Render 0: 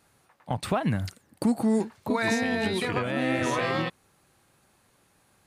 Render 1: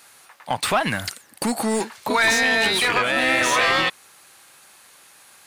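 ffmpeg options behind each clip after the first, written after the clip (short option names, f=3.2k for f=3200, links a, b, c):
-filter_complex "[0:a]crystalizer=i=6:c=0,asplit=2[a][b];[b]highpass=f=720:p=1,volume=17dB,asoftclip=type=tanh:threshold=-7dB[c];[a][c]amix=inputs=2:normalize=0,lowpass=f=1.3k:p=1,volume=-6dB,tiltshelf=f=970:g=-3.5,volume=1dB"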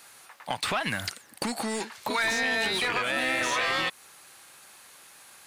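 -filter_complex "[0:a]acrossover=split=1500|6800[a][b][c];[a]acompressor=threshold=-29dB:ratio=4[d];[b]acompressor=threshold=-27dB:ratio=4[e];[c]acompressor=threshold=-43dB:ratio=4[f];[d][e][f]amix=inputs=3:normalize=0,volume=-1.5dB"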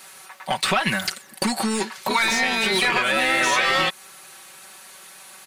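-af "aecho=1:1:5.3:0.87,volume=5dB"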